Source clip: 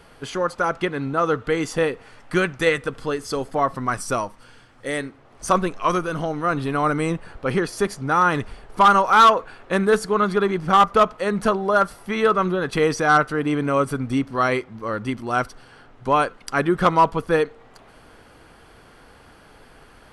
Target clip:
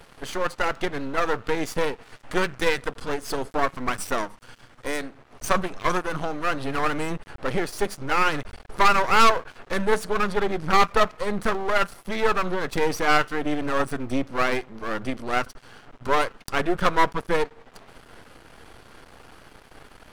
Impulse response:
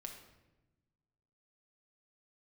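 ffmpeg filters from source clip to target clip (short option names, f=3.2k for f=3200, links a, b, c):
-filter_complex "[0:a]asplit=2[a][b];[b]acompressor=threshold=-32dB:ratio=6,volume=-3dB[c];[a][c]amix=inputs=2:normalize=0,aeval=exprs='max(val(0),0)':c=same"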